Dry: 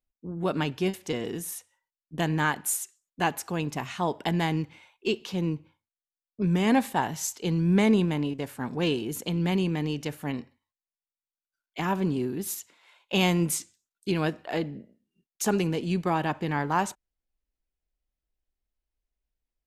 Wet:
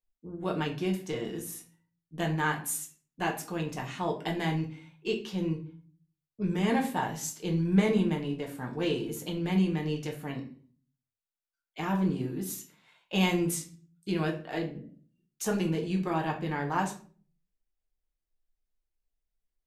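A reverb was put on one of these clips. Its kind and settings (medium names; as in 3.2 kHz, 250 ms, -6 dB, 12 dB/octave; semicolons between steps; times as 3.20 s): simulated room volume 32 m³, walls mixed, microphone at 0.49 m; trim -6.5 dB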